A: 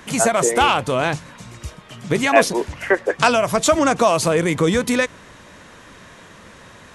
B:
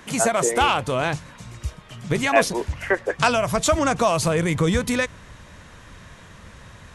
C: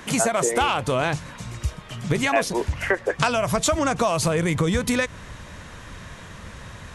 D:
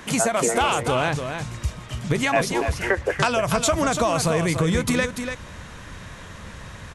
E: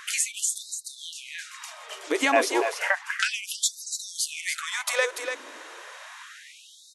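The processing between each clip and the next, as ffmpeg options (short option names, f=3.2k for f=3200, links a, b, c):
-af "asubboost=boost=4:cutoff=140,volume=-3dB"
-af "acompressor=threshold=-24dB:ratio=3,volume=4.5dB"
-af "aecho=1:1:290:0.422"
-af "afftfilt=real='re*gte(b*sr/1024,250*pow(3800/250,0.5+0.5*sin(2*PI*0.32*pts/sr)))':imag='im*gte(b*sr/1024,250*pow(3800/250,0.5+0.5*sin(2*PI*0.32*pts/sr)))':win_size=1024:overlap=0.75"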